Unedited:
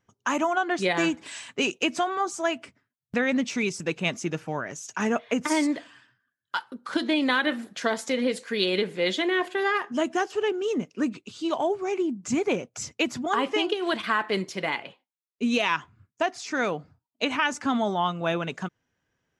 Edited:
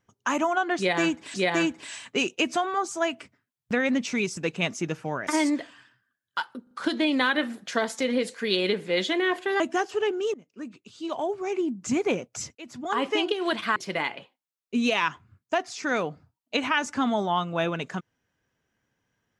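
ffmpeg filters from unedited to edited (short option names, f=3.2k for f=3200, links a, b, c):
-filter_complex "[0:a]asplit=9[a][b][c][d][e][f][g][h][i];[a]atrim=end=1.342[j];[b]atrim=start=0.768:end=4.702[k];[c]atrim=start=5.438:end=6.842[l];[d]atrim=start=6.798:end=6.842[m];[e]atrim=start=6.798:end=9.692[n];[f]atrim=start=10.008:end=10.75,asetpts=PTS-STARTPTS,afade=t=out:st=0.738:d=0.004:c=hsin:silence=0.0668344[o];[g]atrim=start=10.75:end=12.96,asetpts=PTS-STARTPTS,afade=t=in:d=1.36:silence=0.0668344,afade=t=out:st=2.206:d=0.004:c=hsin[p];[h]atrim=start=12.96:end=14.172,asetpts=PTS-STARTPTS,afade=t=in:d=0.5[q];[i]atrim=start=14.438[r];[j][k]acrossfade=d=0.004:c1=hsin:c2=hsin[s];[s][l]acrossfade=d=0.004:c1=hsin:c2=hsin[t];[t][m]acrossfade=d=0.004:c1=hsin:c2=hsin[u];[u][n]acrossfade=d=0.004:c1=hsin:c2=hsin[v];[o][p][q]concat=n=3:v=0:a=1[w];[v][w]acrossfade=d=0.004:c1=hsin:c2=hsin[x];[x][r]acrossfade=d=0.004:c1=hsin:c2=hsin"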